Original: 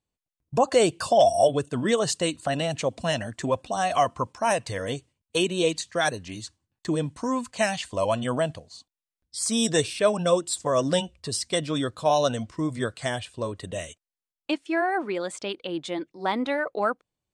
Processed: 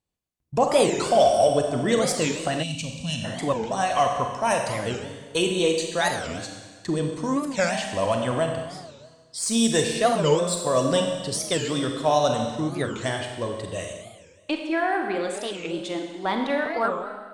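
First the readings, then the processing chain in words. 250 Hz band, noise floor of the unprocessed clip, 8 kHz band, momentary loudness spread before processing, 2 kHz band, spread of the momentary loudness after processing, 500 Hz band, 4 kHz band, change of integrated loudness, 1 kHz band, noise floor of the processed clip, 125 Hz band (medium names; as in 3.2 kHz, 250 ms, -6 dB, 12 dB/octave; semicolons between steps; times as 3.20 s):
+2.0 dB, under -85 dBFS, +2.0 dB, 11 LU, +1.5 dB, 11 LU, +1.5 dB, +1.5 dB, +1.5 dB, +2.0 dB, -52 dBFS, +2.0 dB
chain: Chebyshev shaper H 8 -36 dB, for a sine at -8.5 dBFS; Schroeder reverb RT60 1.5 s, combs from 31 ms, DRR 3 dB; time-frequency box 2.63–3.24 s, 280–2200 Hz -18 dB; warped record 45 rpm, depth 250 cents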